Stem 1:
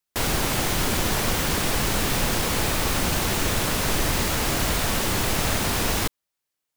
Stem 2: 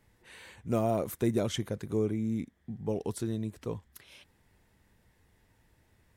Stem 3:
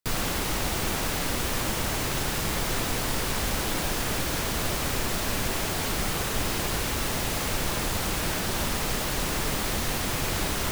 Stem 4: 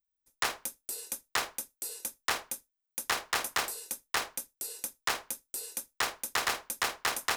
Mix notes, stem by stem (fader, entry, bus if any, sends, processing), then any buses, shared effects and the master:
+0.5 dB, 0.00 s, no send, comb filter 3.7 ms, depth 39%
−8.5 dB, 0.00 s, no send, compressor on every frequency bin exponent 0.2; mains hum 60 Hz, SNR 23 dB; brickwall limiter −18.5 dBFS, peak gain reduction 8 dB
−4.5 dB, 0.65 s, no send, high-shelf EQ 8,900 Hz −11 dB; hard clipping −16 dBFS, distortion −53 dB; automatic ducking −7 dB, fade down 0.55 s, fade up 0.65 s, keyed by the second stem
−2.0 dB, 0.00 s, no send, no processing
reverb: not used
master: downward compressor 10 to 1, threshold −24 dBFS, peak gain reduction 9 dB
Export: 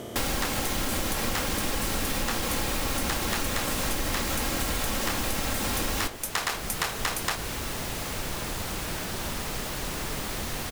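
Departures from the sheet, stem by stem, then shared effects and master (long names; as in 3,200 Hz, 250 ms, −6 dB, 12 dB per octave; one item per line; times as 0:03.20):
stem 3: missing high-shelf EQ 8,900 Hz −11 dB
stem 4 −2.0 dB → +5.0 dB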